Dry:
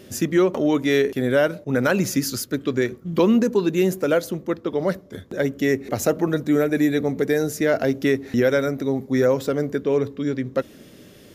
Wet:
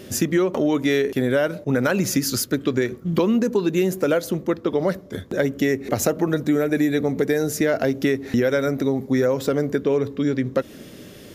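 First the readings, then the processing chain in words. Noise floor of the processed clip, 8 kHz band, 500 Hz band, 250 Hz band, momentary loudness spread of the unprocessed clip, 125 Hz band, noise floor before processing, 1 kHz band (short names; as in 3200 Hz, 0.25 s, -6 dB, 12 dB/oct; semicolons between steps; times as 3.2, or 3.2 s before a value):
-43 dBFS, +3.0 dB, -0.5 dB, 0.0 dB, 7 LU, +1.0 dB, -47 dBFS, -0.5 dB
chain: compressor 4:1, threshold -22 dBFS, peak gain reduction 8.5 dB; gain +5 dB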